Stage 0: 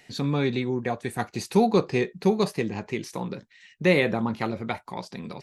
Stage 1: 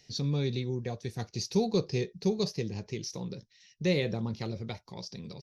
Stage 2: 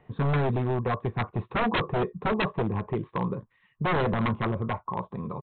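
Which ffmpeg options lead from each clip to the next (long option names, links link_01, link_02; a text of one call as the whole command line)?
ffmpeg -i in.wav -af "firequalizer=gain_entry='entry(120,0);entry(250,-10);entry(450,-6);entry(740,-14);entry(1300,-17);entry(5600,7);entry(8200,-18);entry(13000,-11)':delay=0.05:min_phase=1" out.wav
ffmpeg -i in.wav -af "lowpass=frequency=1100:width_type=q:width=12,aresample=8000,aeval=exprs='0.0422*(abs(mod(val(0)/0.0422+3,4)-2)-1)':channel_layout=same,aresample=44100,volume=8dB" out.wav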